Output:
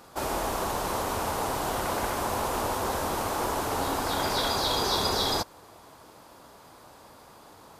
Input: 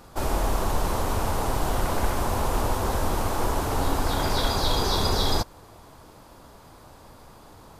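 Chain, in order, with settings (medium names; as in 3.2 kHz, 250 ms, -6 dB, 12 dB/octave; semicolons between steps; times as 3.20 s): high-pass 80 Hz 6 dB/octave; bass shelf 210 Hz -8.5 dB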